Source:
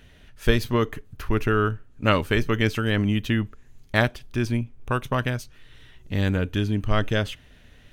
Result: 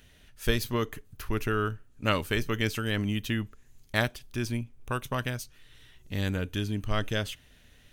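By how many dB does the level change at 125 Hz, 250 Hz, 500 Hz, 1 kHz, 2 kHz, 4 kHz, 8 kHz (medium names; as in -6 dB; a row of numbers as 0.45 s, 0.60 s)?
-7.0 dB, -7.0 dB, -7.0 dB, -6.0 dB, -5.5 dB, -3.0 dB, +1.5 dB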